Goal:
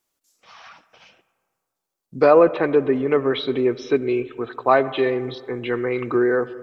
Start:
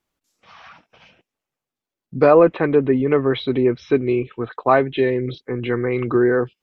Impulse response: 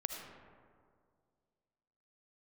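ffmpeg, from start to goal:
-filter_complex "[0:a]bass=f=250:g=-8,treble=f=4000:g=11,asplit=2[s0][s1];[1:a]atrim=start_sample=2205,lowpass=2800[s2];[s1][s2]afir=irnorm=-1:irlink=0,volume=0.299[s3];[s0][s3]amix=inputs=2:normalize=0,volume=0.75"

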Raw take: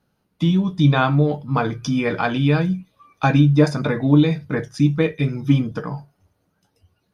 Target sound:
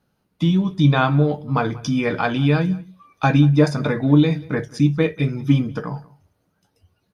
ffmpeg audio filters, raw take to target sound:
-filter_complex "[0:a]asplit=2[s0][s1];[s1]adelay=186.6,volume=0.0794,highshelf=f=4000:g=-4.2[s2];[s0][s2]amix=inputs=2:normalize=0"

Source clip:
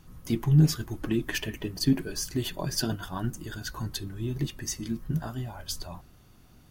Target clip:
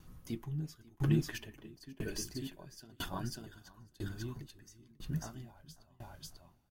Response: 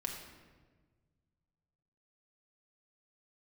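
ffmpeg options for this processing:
-filter_complex "[0:a]asettb=1/sr,asplit=3[s0][s1][s2];[s0]atrim=end=4.384[s3];[s1]atrim=start=4.38:end=5.12,asetpts=PTS-STARTPTS,afade=t=in:d=0.004:c=qsin,afade=t=out:st=0.736:d=0.004:c=qsin,acompressor=threshold=0.0251:ratio=4[s4];[s2]atrim=start=5.116[s5];[s3][s4]acrossfade=d=0.004:c1=hsin:c2=qsin[s6];[s6][s5]acrossfade=d=0.004:c1=qsin:c2=hsin,aecho=1:1:543|1086|1629:0.531|0.0903|0.0153,aeval=exprs='val(0)*pow(10,-29*if(lt(mod(1*n/s,1),2*abs(1)/1000),1-mod(1*n/s,1)/(2*abs(1)/1000),(mod(1*n/s,1)-2*abs(1)/1000)/(1-2*abs(1)/1000))/20)':c=same,volume=0.75"

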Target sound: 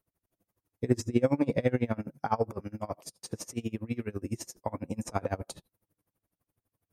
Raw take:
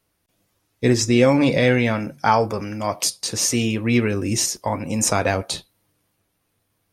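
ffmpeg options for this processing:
-filter_complex "[0:a]equalizer=f=3800:w=0.51:g=-13,asettb=1/sr,asplit=3[s0][s1][s2];[s0]atrim=end=2.904[s3];[s1]atrim=start=2.9:end=5.13,asetpts=PTS-STARTPTS,afade=t=in:d=0.004:c=qsin,afade=t=out:st=2.226:d=0.004:c=qsin,acrossover=split=1400|6600[s4][s5][s6];[s4]acompressor=threshold=0.0794:ratio=4[s7];[s5]acompressor=threshold=0.0178:ratio=4[s8];[s6]acompressor=threshold=0.0112:ratio=4[s9];[s7][s8][s9]amix=inputs=3:normalize=0[s10];[s2]atrim=start=5.126[s11];[s3][s10]acrossfade=d=0.004:c1=hsin:c2=qsin[s12];[s12][s11]acrossfade=d=0.004:c1=qsin:c2=hsin,aeval=exprs='val(0)*pow(10,-27*(0.5-0.5*cos(2*PI*12*n/s))/20)':c=same,volume=0.668"

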